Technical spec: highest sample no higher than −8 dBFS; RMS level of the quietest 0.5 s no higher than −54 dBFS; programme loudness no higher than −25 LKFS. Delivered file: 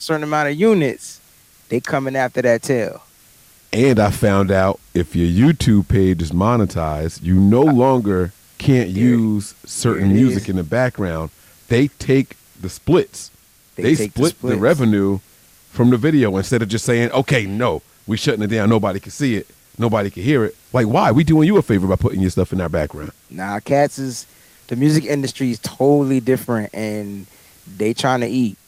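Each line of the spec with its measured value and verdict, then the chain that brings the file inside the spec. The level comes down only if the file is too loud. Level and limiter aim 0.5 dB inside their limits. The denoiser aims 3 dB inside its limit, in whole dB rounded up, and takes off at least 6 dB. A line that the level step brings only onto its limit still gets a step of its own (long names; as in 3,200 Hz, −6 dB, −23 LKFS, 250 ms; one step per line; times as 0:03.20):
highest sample −4.0 dBFS: out of spec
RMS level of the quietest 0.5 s −51 dBFS: out of spec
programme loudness −17.5 LKFS: out of spec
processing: level −8 dB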